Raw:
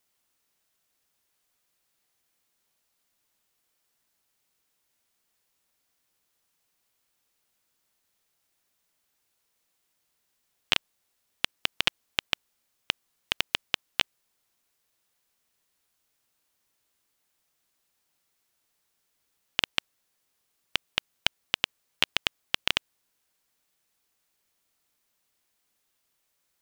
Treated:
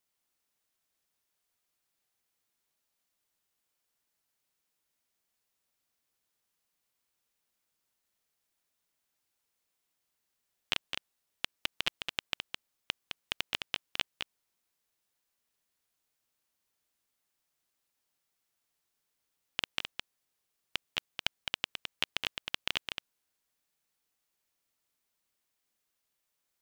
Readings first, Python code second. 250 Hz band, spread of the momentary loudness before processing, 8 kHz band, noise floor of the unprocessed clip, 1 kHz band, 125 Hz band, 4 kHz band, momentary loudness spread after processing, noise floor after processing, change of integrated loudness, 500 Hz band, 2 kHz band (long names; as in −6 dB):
−6.5 dB, 6 LU, −6.5 dB, −76 dBFS, −6.5 dB, −6.5 dB, −6.5 dB, 8 LU, −83 dBFS, −7.0 dB, −6.5 dB, −6.5 dB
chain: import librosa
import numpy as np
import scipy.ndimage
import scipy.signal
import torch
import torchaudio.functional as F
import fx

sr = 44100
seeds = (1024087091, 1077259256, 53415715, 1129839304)

y = x + 10.0 ** (-6.0 / 20.0) * np.pad(x, (int(212 * sr / 1000.0), 0))[:len(x)]
y = y * librosa.db_to_amplitude(-7.5)